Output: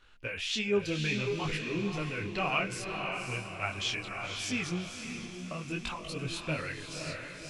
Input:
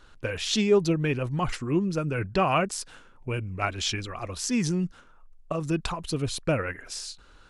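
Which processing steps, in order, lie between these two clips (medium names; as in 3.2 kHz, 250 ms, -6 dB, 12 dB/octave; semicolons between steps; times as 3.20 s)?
peaking EQ 2.5 kHz +11 dB 1.1 oct; on a send: echo that smears into a reverb 543 ms, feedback 47%, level -5 dB; on the sum: detune thickener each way 23 cents; trim -6.5 dB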